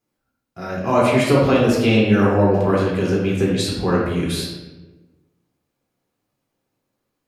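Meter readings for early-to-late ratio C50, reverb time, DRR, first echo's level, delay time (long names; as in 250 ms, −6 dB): 1.0 dB, 1.2 s, −5.0 dB, no echo audible, no echo audible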